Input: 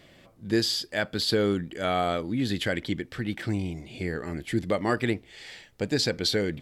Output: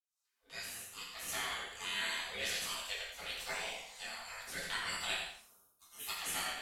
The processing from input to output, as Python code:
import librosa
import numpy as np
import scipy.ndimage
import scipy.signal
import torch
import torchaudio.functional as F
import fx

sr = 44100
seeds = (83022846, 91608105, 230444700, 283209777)

y = fx.fade_in_head(x, sr, length_s=2.04)
y = fx.pre_emphasis(y, sr, coefficient=0.97, at=(5.41, 6.07), fade=0.02)
y = fx.spec_gate(y, sr, threshold_db=-25, keep='weak')
y = fx.echo_feedback(y, sr, ms=86, feedback_pct=22, wet_db=-8.0)
y = fx.rev_gated(y, sr, seeds[0], gate_ms=220, shape='falling', drr_db=-6.0)